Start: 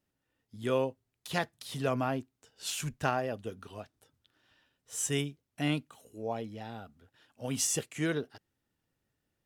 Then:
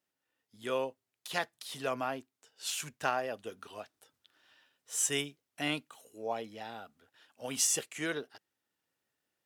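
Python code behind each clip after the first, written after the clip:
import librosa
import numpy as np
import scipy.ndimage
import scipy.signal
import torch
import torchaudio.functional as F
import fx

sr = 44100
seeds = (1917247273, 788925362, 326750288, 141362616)

y = fx.highpass(x, sr, hz=220.0, slope=6)
y = fx.low_shelf(y, sr, hz=340.0, db=-10.0)
y = fx.rider(y, sr, range_db=5, speed_s=2.0)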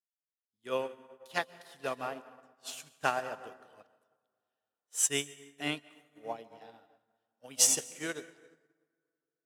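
y = fx.rev_plate(x, sr, seeds[0], rt60_s=3.0, hf_ratio=0.45, predelay_ms=120, drr_db=5.0)
y = fx.upward_expand(y, sr, threshold_db=-51.0, expansion=2.5)
y = y * librosa.db_to_amplitude(6.5)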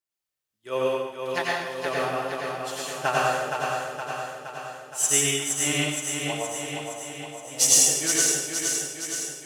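y = fx.notch_comb(x, sr, f0_hz=240.0)
y = fx.echo_feedback(y, sr, ms=468, feedback_pct=60, wet_db=-5.0)
y = fx.rev_plate(y, sr, seeds[1], rt60_s=0.87, hf_ratio=1.0, predelay_ms=80, drr_db=-4.5)
y = y * librosa.db_to_amplitude(4.5)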